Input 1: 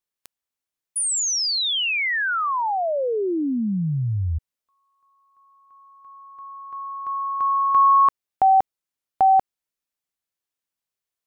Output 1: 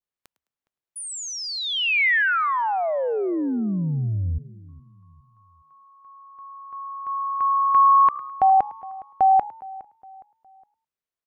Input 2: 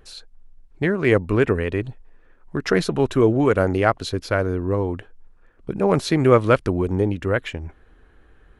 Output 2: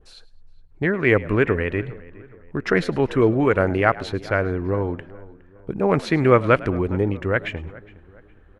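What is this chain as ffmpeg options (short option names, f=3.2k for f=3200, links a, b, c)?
-filter_complex "[0:a]highshelf=f=3.4k:g=-10.5,asplit=2[a][b];[b]asplit=2[c][d];[c]adelay=105,afreqshift=66,volume=-20dB[e];[d]adelay=210,afreqshift=132,volume=-30.2dB[f];[e][f]amix=inputs=2:normalize=0[g];[a][g]amix=inputs=2:normalize=0,adynamicequalizer=threshold=0.0112:dfrequency=2100:dqfactor=1.1:tfrequency=2100:tqfactor=1.1:attack=5:release=100:ratio=0.375:range=4:mode=boostabove:tftype=bell,asplit=2[h][i];[i]adelay=413,lowpass=f=2.2k:p=1,volume=-20dB,asplit=2[j][k];[k]adelay=413,lowpass=f=2.2k:p=1,volume=0.42,asplit=2[l][m];[m]adelay=413,lowpass=f=2.2k:p=1,volume=0.42[n];[j][l][n]amix=inputs=3:normalize=0[o];[h][o]amix=inputs=2:normalize=0,volume=-1dB"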